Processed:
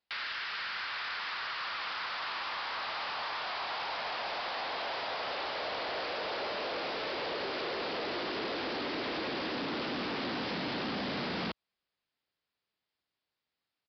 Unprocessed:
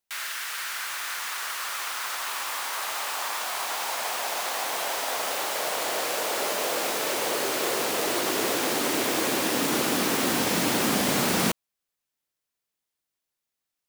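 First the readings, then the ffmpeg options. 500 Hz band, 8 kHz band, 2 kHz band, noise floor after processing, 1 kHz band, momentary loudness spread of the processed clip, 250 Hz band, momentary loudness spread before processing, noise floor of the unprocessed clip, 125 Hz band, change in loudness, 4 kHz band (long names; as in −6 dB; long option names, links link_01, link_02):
−8.0 dB, below −30 dB, −6.5 dB, below −85 dBFS, −6.5 dB, 1 LU, −9.5 dB, 7 LU, −85 dBFS, −9.5 dB, −9.0 dB, −7.0 dB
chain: -af "asoftclip=type=tanh:threshold=-29.5dB,acompressor=threshold=-35dB:ratio=6,highpass=40,aresample=11025,aresample=44100,volume=2dB"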